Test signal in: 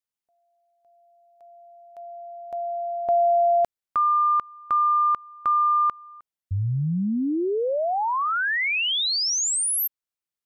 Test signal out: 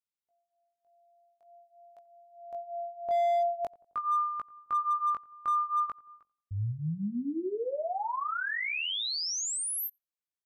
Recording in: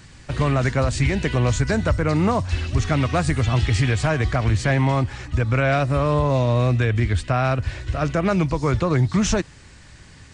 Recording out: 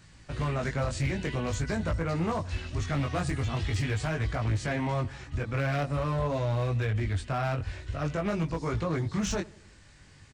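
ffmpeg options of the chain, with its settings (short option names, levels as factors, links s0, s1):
-filter_complex "[0:a]flanger=delay=18:depth=3.7:speed=0.46,asoftclip=type=hard:threshold=0.133,asplit=2[s0][s1];[s1]adelay=88,lowpass=f=1200:p=1,volume=0.0944,asplit=2[s2][s3];[s3]adelay=88,lowpass=f=1200:p=1,volume=0.52,asplit=2[s4][s5];[s5]adelay=88,lowpass=f=1200:p=1,volume=0.52,asplit=2[s6][s7];[s7]adelay=88,lowpass=f=1200:p=1,volume=0.52[s8];[s2][s4][s6][s8]amix=inputs=4:normalize=0[s9];[s0][s9]amix=inputs=2:normalize=0,volume=0.501"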